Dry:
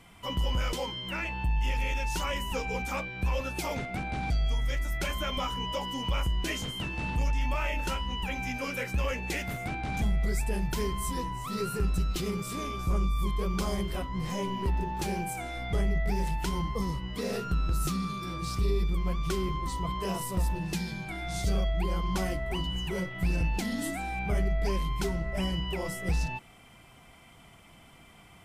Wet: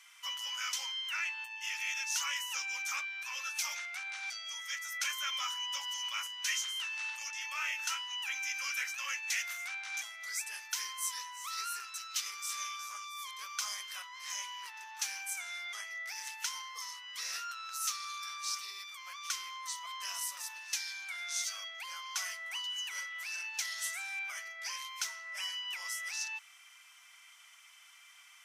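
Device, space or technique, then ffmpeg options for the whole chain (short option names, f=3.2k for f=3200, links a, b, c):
headphones lying on a table: -af "highpass=f=1.3k:w=0.5412,highpass=f=1.3k:w=1.3066,equalizer=f=6k:t=o:w=0.39:g=10.5"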